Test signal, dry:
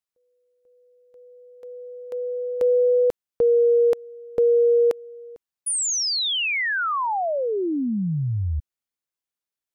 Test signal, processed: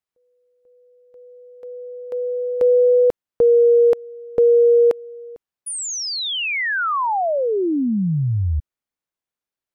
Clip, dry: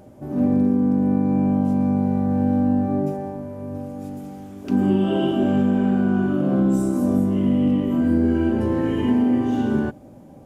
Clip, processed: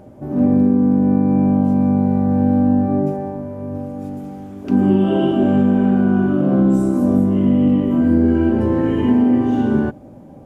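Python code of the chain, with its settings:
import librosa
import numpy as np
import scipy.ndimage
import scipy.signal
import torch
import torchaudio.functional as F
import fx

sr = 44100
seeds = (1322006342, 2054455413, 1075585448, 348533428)

y = fx.high_shelf(x, sr, hz=2900.0, db=-8.5)
y = y * librosa.db_to_amplitude(4.5)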